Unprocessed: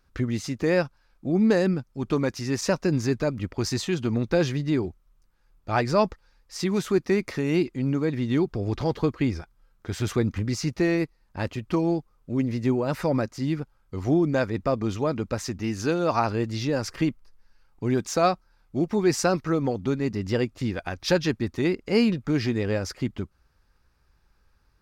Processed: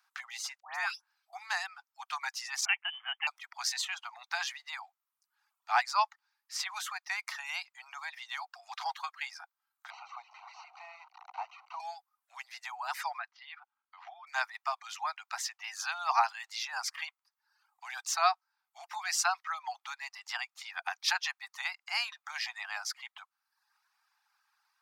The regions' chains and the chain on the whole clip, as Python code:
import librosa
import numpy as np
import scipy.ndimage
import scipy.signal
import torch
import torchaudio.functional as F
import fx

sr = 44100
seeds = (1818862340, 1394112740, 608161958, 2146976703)

y = fx.chain(x, sr, fx.transient(attack_db=-10, sustain_db=3),
    fx.dispersion(late='highs', ms=146.0, hz=1500.0), at=(0.6, 1.33))
y = fx.chain(y, sr, fx.highpass(hz=760.0, slope=12),
    fx.freq_invert(carrier_hz=3300), at=(2.65, 3.27))
y = fx.chain(y, sr, fx.delta_mod(bps=32000, step_db=-30.0),
    fx.moving_average(points=26),
    fx.band_squash(depth_pct=70), at=(9.9, 11.8))
y = fx.chain(y, sr, fx.lowpass(hz=3600.0, slope=24),
    fx.level_steps(step_db=9), at=(13.18, 14.27))
y = scipy.signal.sosfilt(scipy.signal.butter(16, 740.0, 'highpass', fs=sr, output='sos'), y)
y = fx.dereverb_blind(y, sr, rt60_s=0.77)